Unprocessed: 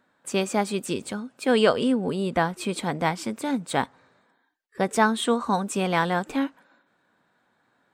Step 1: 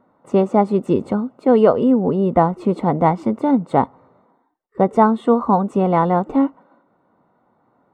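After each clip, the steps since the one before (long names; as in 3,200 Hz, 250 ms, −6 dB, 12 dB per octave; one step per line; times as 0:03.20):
in parallel at +2 dB: speech leveller 0.5 s
on the sum: Savitzky-Golay smoothing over 65 samples
level +2 dB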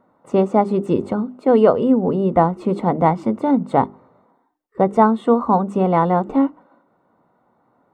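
mains-hum notches 50/100/150/200/250/300/350/400 Hz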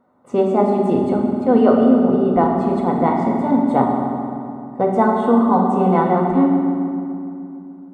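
convolution reverb RT60 2.7 s, pre-delay 4 ms, DRR −1 dB
level −3.5 dB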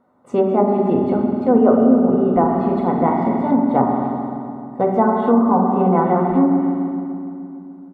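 far-end echo of a speakerphone 270 ms, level −27 dB
treble cut that deepens with the level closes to 1,300 Hz, closed at −10 dBFS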